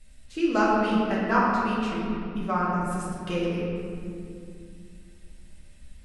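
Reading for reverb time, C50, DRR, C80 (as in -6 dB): 2.4 s, -1.5 dB, -7.0 dB, 0.0 dB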